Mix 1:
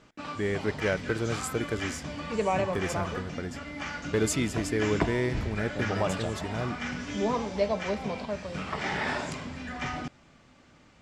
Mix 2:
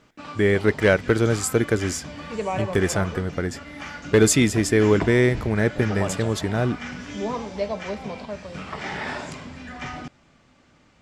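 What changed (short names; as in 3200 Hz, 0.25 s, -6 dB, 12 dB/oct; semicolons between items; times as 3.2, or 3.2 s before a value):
speech +12.0 dB; reverb: off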